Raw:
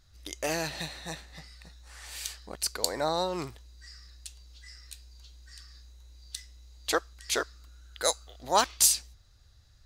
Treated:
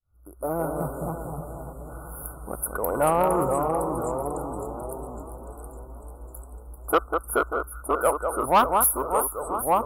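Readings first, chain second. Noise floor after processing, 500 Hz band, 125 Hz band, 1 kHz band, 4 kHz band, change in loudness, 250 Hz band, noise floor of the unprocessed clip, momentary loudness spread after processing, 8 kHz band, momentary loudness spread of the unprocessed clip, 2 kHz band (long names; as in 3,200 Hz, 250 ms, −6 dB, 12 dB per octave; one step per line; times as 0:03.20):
−45 dBFS, +9.5 dB, +10.5 dB, +10.5 dB, −11.5 dB, +4.0 dB, +10.5 dB, −59 dBFS, 21 LU, −1.5 dB, 23 LU, +2.5 dB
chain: fade in at the beginning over 0.83 s
brick-wall band-stop 1,500–9,800 Hz
dynamic equaliser 1,200 Hz, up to +5 dB, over −47 dBFS, Q 3.6
on a send: delay that swaps between a low-pass and a high-pass 196 ms, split 2,000 Hz, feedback 77%, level −7 dB
on the sum: delay with pitch and tempo change per echo 114 ms, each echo −2 semitones, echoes 3, each echo −6 dB
soft clipping −19.5 dBFS, distortion −14 dB
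level +8.5 dB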